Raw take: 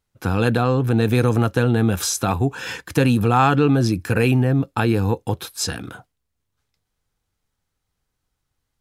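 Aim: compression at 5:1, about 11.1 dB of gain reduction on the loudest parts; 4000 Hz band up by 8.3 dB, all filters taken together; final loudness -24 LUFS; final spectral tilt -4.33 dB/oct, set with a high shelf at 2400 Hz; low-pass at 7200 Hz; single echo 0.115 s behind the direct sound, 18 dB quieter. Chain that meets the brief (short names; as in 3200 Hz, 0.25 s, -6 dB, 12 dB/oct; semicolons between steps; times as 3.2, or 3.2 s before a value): LPF 7200 Hz; high shelf 2400 Hz +7.5 dB; bell 4000 Hz +4 dB; compressor 5:1, threshold -24 dBFS; echo 0.115 s -18 dB; gain +3.5 dB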